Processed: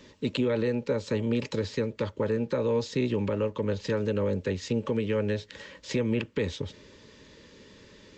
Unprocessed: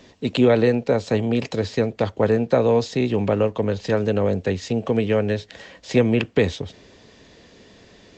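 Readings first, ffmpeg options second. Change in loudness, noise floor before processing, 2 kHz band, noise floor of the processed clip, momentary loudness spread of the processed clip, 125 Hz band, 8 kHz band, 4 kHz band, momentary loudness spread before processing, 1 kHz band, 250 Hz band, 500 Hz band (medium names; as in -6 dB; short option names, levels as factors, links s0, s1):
-8.0 dB, -51 dBFS, -8.0 dB, -55 dBFS, 5 LU, -7.5 dB, no reading, -6.0 dB, 7 LU, -11.0 dB, -7.5 dB, -8.5 dB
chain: -af "alimiter=limit=0.2:level=0:latency=1:release=234,asuperstop=centerf=720:order=20:qfactor=3.8,volume=0.708"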